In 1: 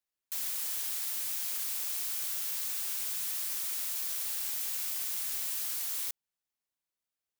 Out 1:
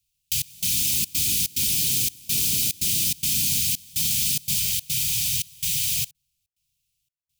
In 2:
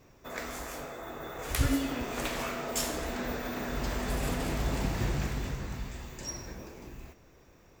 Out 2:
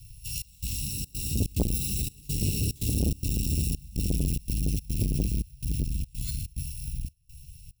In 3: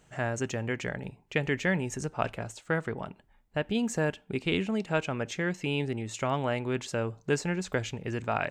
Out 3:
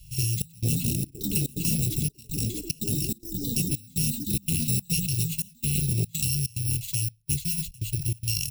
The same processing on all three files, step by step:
samples in bit-reversed order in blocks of 128 samples
Chebyshev band-stop filter 150–2,600 Hz, order 4
parametric band 1,200 Hz +12 dB 0.52 octaves
downward compressor 2.5 to 1, threshold −37 dBFS
delay with pitch and tempo change per echo 279 ms, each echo +6 semitones, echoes 3
gate pattern "xxxx..xxxx.xxx.x" 144 BPM −24 dB
low-shelf EQ 450 Hz +11.5 dB
saturating transformer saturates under 360 Hz
normalise the peak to −9 dBFS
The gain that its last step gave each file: +15.0, +6.5, +9.0 decibels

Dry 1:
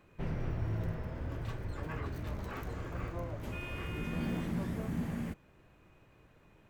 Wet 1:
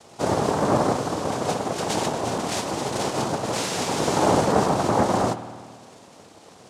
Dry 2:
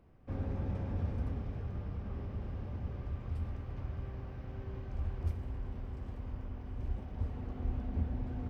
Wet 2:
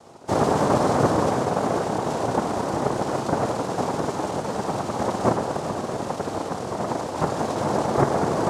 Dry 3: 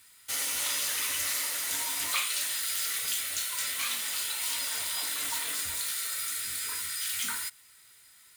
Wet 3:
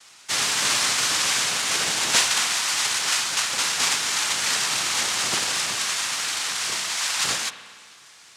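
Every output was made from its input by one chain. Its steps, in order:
cochlear-implant simulation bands 2
spring reverb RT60 1.8 s, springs 51 ms, chirp 30 ms, DRR 11.5 dB
normalise the peak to −6 dBFS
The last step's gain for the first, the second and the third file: +15.5, +19.0, +11.0 decibels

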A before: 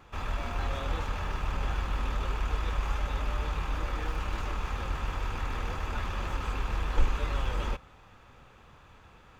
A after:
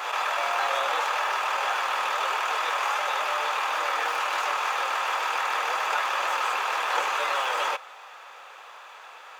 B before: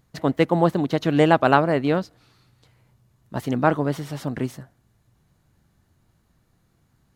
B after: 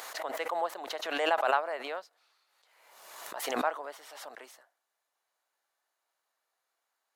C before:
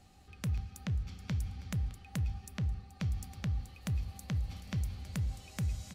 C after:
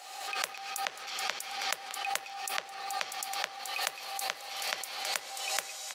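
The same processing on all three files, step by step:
high-pass filter 600 Hz 24 dB per octave
dynamic equaliser 3,900 Hz, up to −3 dB, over −44 dBFS, Q 0.88
background raised ahead of every attack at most 43 dB per second
normalise the peak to −12 dBFS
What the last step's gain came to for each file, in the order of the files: +13.5, −9.5, +12.5 decibels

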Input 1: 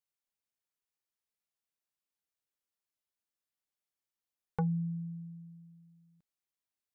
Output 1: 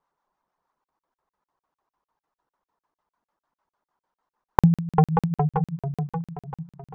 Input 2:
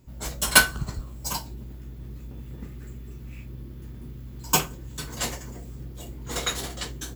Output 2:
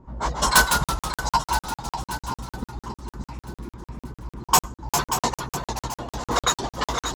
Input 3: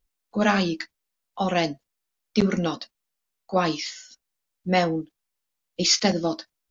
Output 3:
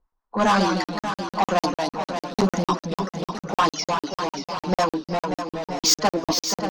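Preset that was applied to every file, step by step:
low-pass that shuts in the quiet parts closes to 1,500 Hz, open at −19 dBFS
reverb reduction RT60 1 s
graphic EQ with 15 bands 100 Hz −10 dB, 1,000 Hz +12 dB, 2,500 Hz −7 dB, 6,300 Hz +6 dB
in parallel at −8.5 dB: hard clipping −15 dBFS
on the sum: two-band tremolo in antiphase 6.5 Hz, depth 50%, crossover 690 Hz
soft clipping −18.5 dBFS
delay with pitch and tempo change per echo 123 ms, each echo −1 semitone, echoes 3, each echo −6 dB
on a send: feedback echo with a long and a short gap by turns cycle 971 ms, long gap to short 1.5 to 1, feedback 31%, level −9 dB
on the sum: regular buffer underruns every 0.15 s, samples 2,048, zero, from 0:00.84
loudness normalisation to −24 LKFS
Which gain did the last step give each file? +19.5, +7.5, +4.5 decibels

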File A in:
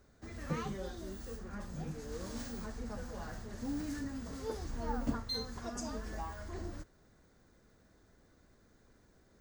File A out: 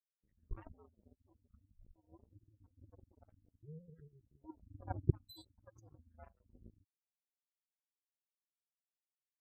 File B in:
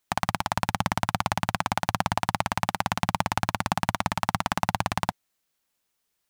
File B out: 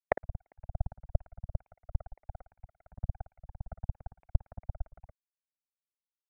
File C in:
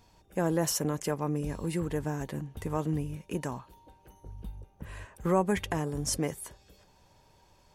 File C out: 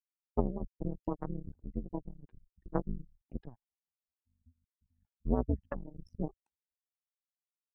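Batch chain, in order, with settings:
expanding power law on the bin magnitudes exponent 3.6
treble cut that deepens with the level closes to 330 Hz, closed at −25 dBFS
frequency shifter −130 Hz
power curve on the samples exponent 3
level +8.5 dB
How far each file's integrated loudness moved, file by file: −3.0, −13.0, −7.0 LU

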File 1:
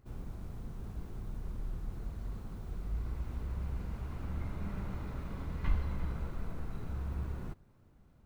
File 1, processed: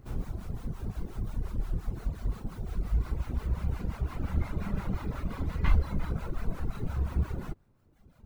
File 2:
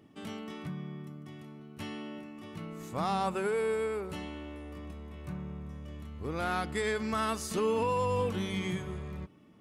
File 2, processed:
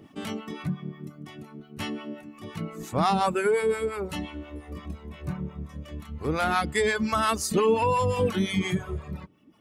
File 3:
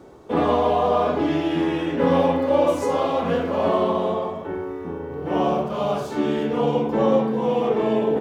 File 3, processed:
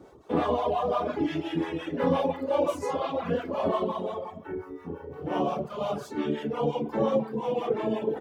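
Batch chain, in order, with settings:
two-band tremolo in antiphase 5.7 Hz, depth 50%, crossover 640 Hz
reverb reduction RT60 1.3 s
normalise the peak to −12 dBFS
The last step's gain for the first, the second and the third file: +11.5, +11.0, −2.5 decibels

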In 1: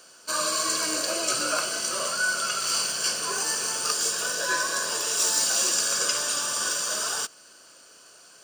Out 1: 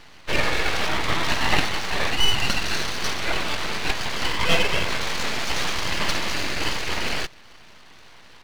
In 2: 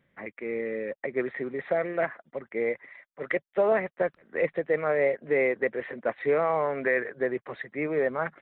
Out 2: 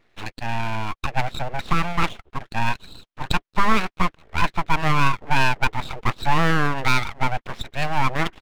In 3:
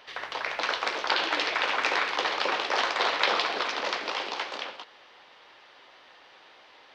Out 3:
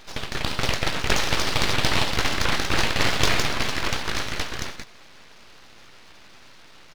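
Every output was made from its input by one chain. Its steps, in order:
downsampling to 8,000 Hz
full-wave rectification
loudness normalisation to −24 LKFS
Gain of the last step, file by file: +11.0, +9.0, +7.5 decibels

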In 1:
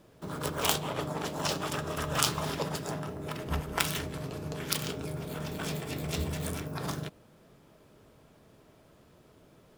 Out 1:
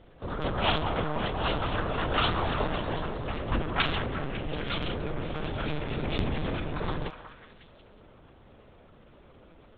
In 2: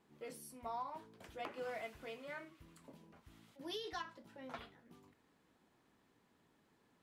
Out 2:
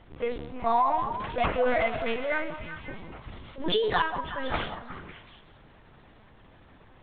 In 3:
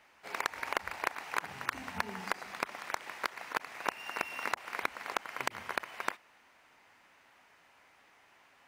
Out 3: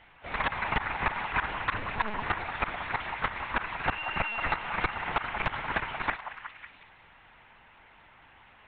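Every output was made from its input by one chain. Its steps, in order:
linear-prediction vocoder at 8 kHz pitch kept
transient designer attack −1 dB, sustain +4 dB
echo through a band-pass that steps 183 ms, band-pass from 850 Hz, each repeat 0.7 octaves, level −6.5 dB
normalise the peak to −12 dBFS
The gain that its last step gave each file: +4.5, +19.5, +6.5 decibels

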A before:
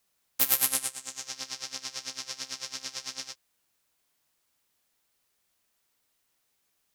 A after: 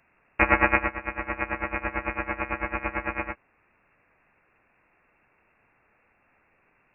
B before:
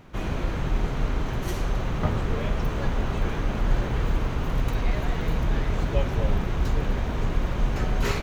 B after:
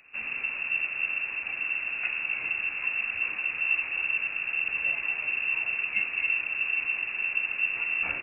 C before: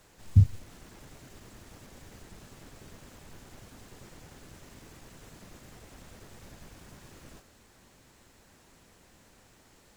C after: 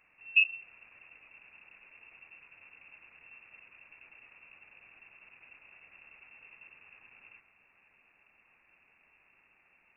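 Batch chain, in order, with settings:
voice inversion scrambler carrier 2,700 Hz
loudness normalisation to −27 LKFS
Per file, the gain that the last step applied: +18.0, −8.0, −7.0 decibels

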